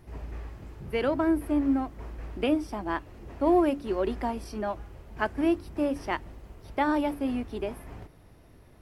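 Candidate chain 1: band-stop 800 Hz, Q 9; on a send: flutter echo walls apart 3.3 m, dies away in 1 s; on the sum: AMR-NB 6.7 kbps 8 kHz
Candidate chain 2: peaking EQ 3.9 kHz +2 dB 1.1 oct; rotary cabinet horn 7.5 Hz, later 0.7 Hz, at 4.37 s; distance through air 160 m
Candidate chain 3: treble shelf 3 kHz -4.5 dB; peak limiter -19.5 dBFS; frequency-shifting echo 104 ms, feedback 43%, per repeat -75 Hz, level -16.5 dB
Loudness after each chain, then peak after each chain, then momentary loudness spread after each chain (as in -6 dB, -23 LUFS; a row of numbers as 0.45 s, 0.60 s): -25.0 LUFS, -31.0 LUFS, -31.0 LUFS; -6.0 dBFS, -13.5 dBFS, -18.0 dBFS; 22 LU, 18 LU, 16 LU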